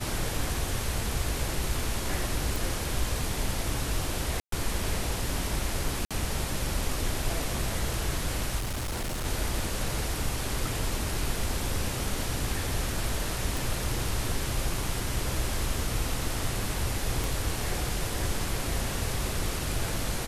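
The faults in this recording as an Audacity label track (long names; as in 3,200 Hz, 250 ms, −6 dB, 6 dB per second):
2.560000	2.560000	click
4.400000	4.520000	drop-out 123 ms
6.050000	6.110000	drop-out 56 ms
8.580000	9.260000	clipping −28.5 dBFS
13.570000	13.570000	click
17.240000	17.240000	click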